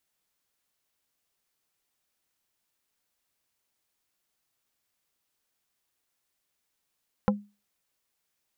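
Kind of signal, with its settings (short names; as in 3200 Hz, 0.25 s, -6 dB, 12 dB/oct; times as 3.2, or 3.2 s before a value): wood hit plate, lowest mode 205 Hz, decay 0.29 s, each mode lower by 2 dB, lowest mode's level -17.5 dB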